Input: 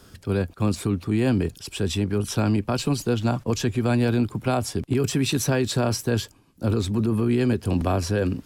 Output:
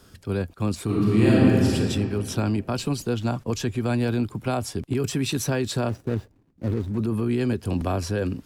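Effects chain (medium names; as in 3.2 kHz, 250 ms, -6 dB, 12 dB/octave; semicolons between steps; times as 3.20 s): 0.84–1.74 s: reverb throw, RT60 2.4 s, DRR -7.5 dB; 5.89–6.98 s: median filter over 41 samples; trim -2.5 dB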